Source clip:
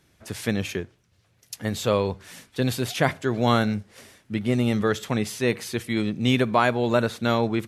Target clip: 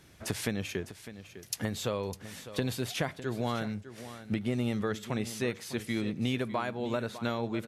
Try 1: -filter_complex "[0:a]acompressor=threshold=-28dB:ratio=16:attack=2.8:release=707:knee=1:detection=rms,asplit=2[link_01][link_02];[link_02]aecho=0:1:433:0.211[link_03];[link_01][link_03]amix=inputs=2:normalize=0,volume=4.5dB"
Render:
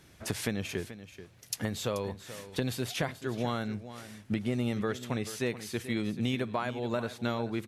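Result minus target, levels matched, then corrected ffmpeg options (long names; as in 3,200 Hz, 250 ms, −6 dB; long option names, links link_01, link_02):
echo 171 ms early
-filter_complex "[0:a]acompressor=threshold=-28dB:ratio=16:attack=2.8:release=707:knee=1:detection=rms,asplit=2[link_01][link_02];[link_02]aecho=0:1:604:0.211[link_03];[link_01][link_03]amix=inputs=2:normalize=0,volume=4.5dB"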